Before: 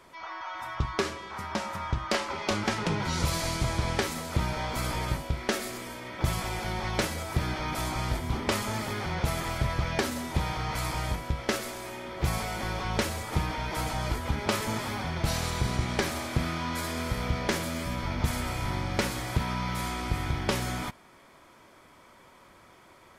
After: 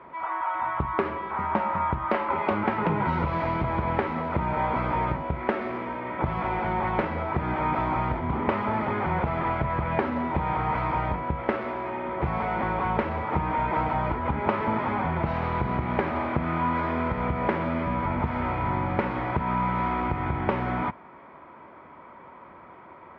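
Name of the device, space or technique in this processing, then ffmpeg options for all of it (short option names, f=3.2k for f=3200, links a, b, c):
bass amplifier: -af "acompressor=threshold=-28dB:ratio=4,highpass=76,equalizer=f=110:t=q:w=4:g=-6,equalizer=f=940:t=q:w=4:g=5,equalizer=f=1.7k:t=q:w=4:g=-4,lowpass=f=2.1k:w=0.5412,lowpass=f=2.1k:w=1.3066,volume=7.5dB"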